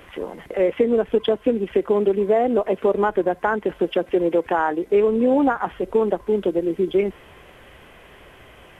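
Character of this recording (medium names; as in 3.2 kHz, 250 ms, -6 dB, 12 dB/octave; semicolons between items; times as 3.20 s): noise floor -48 dBFS; spectral tilt -2.5 dB/octave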